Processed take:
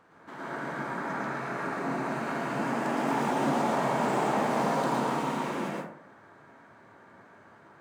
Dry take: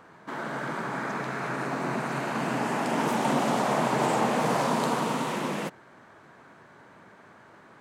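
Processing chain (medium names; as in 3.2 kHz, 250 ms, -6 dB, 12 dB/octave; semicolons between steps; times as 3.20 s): median filter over 3 samples; plate-style reverb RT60 0.68 s, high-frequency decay 0.4×, pre-delay 100 ms, DRR -5 dB; trim -8.5 dB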